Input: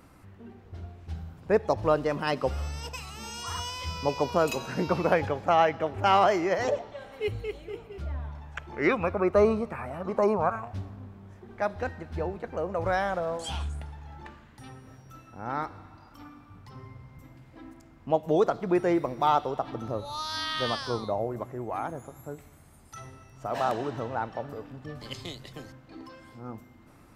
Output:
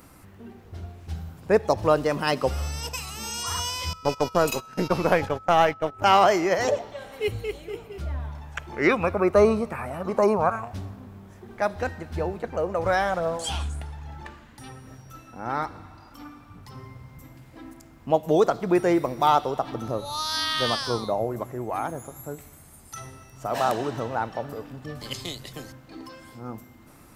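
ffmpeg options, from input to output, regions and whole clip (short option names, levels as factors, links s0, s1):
-filter_complex "[0:a]asettb=1/sr,asplit=3[s0][s1][s2];[s0]atrim=end=3.934[s3];[s1]atrim=start=3.93:end=6.02,asetpts=PTS-STARTPTS,afade=t=in:d=0.004:c=qsin,afade=t=out:st=2.086:d=0.004:c=qsin,aeval=exprs='if(lt(val(0),0),0.708*val(0),val(0))':c=same,agate=range=0.112:threshold=0.02:ratio=16:release=100:detection=peak,aeval=exprs='val(0)+0.00447*sin(2*PI*1300*n/s)':c=same[s4];[s2]atrim=start=6.016[s5];[s3][s4]acrossfade=d=0.004:c1=hsin:c2=qsin[s6];[s6][s5]acrossfade=d=0.004:c1=qsin:c2=hsin,asettb=1/sr,asplit=3[s7][s8][s9];[s7]atrim=end=12.434[s10];[s8]atrim=start=12.43:end=16.63,asetpts=PTS-STARTPTS,afade=t=in:d=0.004:c=qsin,afade=t=out:st=4.196:d=0.004:c=qsin,highshelf=f=9800:g=-6.5,aphaser=in_gain=1:out_gain=1:delay=4.2:decay=0.25:speed=1.2:type=triangular[s11];[s9]atrim=start=16.626[s12];[s10][s11]acrossfade=d=0.004:c1=hsin:c2=qsin[s13];[s13][s12]acrossfade=d=0.004:c1=qsin:c2=hsin,highshelf=f=6400:g=11.5,bandreject=f=50:t=h:w=6,bandreject=f=100:t=h:w=6,volume=1.5"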